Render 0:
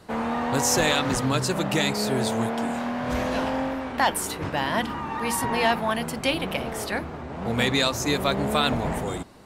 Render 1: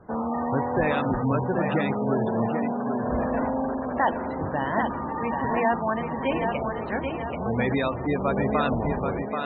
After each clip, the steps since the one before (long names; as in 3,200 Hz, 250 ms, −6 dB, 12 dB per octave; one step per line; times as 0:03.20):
Gaussian smoothing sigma 3.2 samples
feedback echo with a high-pass in the loop 783 ms, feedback 49%, high-pass 190 Hz, level −5 dB
gate on every frequency bin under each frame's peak −20 dB strong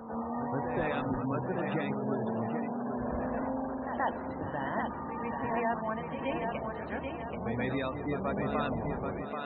backwards echo 129 ms −8.5 dB
level −8.5 dB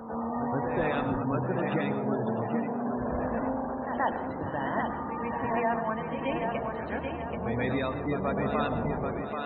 dense smooth reverb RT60 0.51 s, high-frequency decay 0.45×, pre-delay 90 ms, DRR 10.5 dB
level +3 dB